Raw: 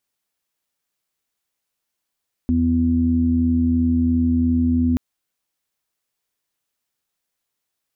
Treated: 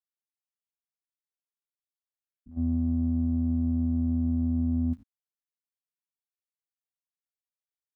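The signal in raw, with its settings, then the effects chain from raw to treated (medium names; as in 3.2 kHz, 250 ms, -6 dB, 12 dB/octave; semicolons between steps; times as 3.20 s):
steady additive tone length 2.48 s, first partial 82.9 Hz, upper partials -14/5/-15 dB, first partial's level -21 dB
spectrogram pixelated in time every 100 ms; gate -17 dBFS, range -24 dB; peaking EQ 370 Hz -12.5 dB 0.73 oct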